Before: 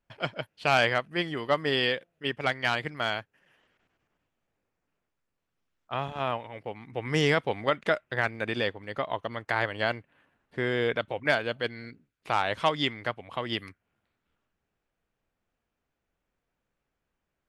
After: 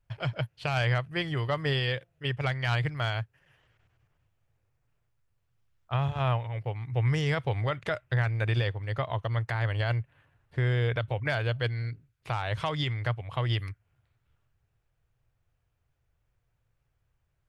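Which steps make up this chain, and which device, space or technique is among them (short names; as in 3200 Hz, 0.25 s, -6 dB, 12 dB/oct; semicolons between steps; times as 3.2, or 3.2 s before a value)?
car stereo with a boomy subwoofer (resonant low shelf 160 Hz +10 dB, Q 3; limiter -19 dBFS, peak gain reduction 9.5 dB)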